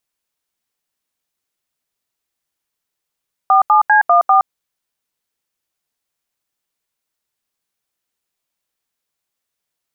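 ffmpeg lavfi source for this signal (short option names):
-f lavfi -i "aevalsrc='0.316*clip(min(mod(t,0.198),0.118-mod(t,0.198))/0.002,0,1)*(eq(floor(t/0.198),0)*(sin(2*PI*770*mod(t,0.198))+sin(2*PI*1209*mod(t,0.198)))+eq(floor(t/0.198),1)*(sin(2*PI*852*mod(t,0.198))+sin(2*PI*1209*mod(t,0.198)))+eq(floor(t/0.198),2)*(sin(2*PI*852*mod(t,0.198))+sin(2*PI*1633*mod(t,0.198)))+eq(floor(t/0.198),3)*(sin(2*PI*697*mod(t,0.198))+sin(2*PI*1209*mod(t,0.198)))+eq(floor(t/0.198),4)*(sin(2*PI*770*mod(t,0.198))+sin(2*PI*1209*mod(t,0.198))))':d=0.99:s=44100"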